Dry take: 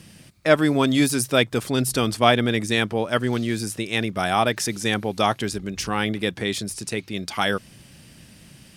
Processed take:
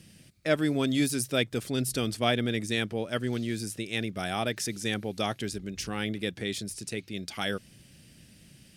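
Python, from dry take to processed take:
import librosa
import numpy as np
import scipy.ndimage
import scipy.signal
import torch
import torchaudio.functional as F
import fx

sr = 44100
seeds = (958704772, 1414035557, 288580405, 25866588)

y = fx.peak_eq(x, sr, hz=1000.0, db=-9.0, octaves=0.96)
y = y * librosa.db_to_amplitude(-6.5)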